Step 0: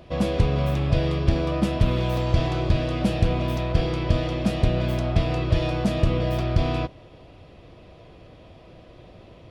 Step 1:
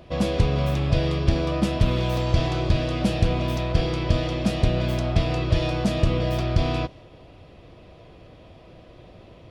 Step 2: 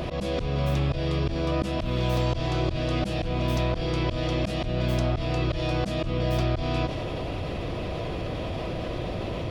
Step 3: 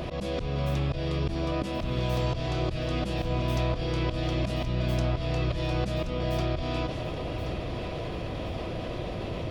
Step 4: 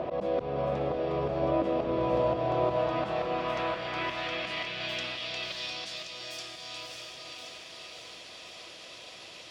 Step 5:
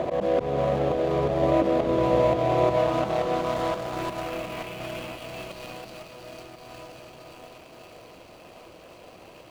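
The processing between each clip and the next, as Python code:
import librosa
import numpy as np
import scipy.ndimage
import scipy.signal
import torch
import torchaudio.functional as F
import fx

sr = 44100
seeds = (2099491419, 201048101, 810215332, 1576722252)

y1 = fx.dynamic_eq(x, sr, hz=5700.0, q=0.72, threshold_db=-52.0, ratio=4.0, max_db=4)
y2 = fx.auto_swell(y1, sr, attack_ms=359.0)
y2 = fx.env_flatten(y2, sr, amount_pct=70)
y2 = y2 * 10.0 ** (-1.0 / 20.0)
y3 = fx.echo_feedback(y2, sr, ms=1076, feedback_pct=40, wet_db=-10.5)
y3 = y3 * 10.0 ** (-3.0 / 20.0)
y4 = fx.echo_diffused(y3, sr, ms=606, feedback_pct=44, wet_db=-3)
y4 = fx.filter_sweep_bandpass(y4, sr, from_hz=650.0, to_hz=7000.0, start_s=2.45, end_s=6.41, q=1.2)
y4 = y4 * 10.0 ** (5.5 / 20.0)
y5 = scipy.ndimage.median_filter(y4, 25, mode='constant')
y5 = y5 * 10.0 ** (6.5 / 20.0)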